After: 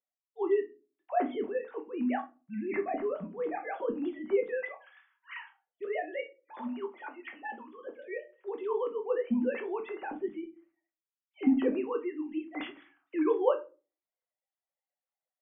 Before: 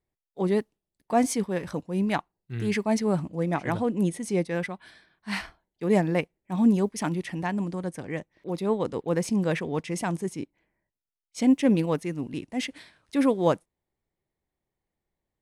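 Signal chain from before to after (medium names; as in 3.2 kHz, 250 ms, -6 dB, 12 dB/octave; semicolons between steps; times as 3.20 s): formants replaced by sine waves; 5.85–7.87 s: high-pass 640 Hz 12 dB/octave; simulated room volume 130 m³, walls furnished, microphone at 1.1 m; trim -6 dB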